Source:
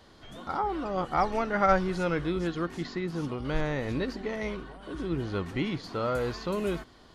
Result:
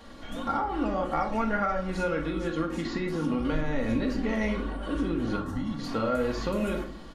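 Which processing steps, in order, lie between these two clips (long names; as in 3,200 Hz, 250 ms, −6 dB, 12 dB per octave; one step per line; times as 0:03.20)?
parametric band 4,600 Hz −4.5 dB 0.67 octaves
comb filter 3.6 ms, depth 49%
downward compressor 6 to 1, threshold −32 dBFS, peak gain reduction 15.5 dB
0:05.36–0:05.79: phaser with its sweep stopped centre 1,000 Hz, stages 4
rectangular room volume 690 cubic metres, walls furnished, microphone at 1.7 metres
level +5 dB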